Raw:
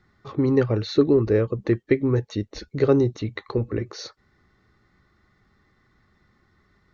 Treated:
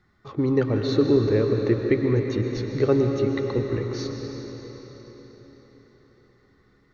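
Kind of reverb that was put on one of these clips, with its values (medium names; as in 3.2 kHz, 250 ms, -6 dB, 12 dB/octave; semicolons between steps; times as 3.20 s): algorithmic reverb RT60 4.7 s, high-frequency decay 0.9×, pre-delay 85 ms, DRR 2.5 dB; trim -2 dB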